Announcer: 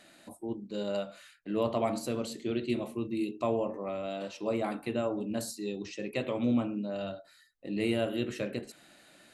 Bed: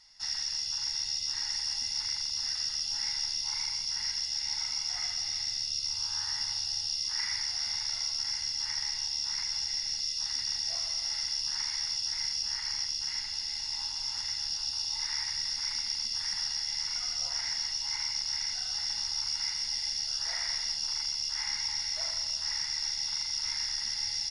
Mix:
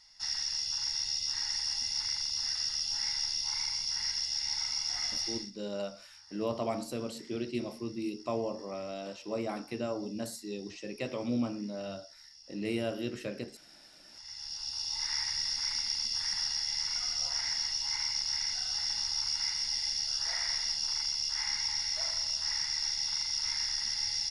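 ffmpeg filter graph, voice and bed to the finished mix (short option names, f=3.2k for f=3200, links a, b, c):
-filter_complex "[0:a]adelay=4850,volume=-3.5dB[a];[1:a]volume=22dB,afade=t=out:st=5.25:d=0.26:silence=0.0794328,afade=t=in:st=14.08:d=1.06:silence=0.0749894[b];[a][b]amix=inputs=2:normalize=0"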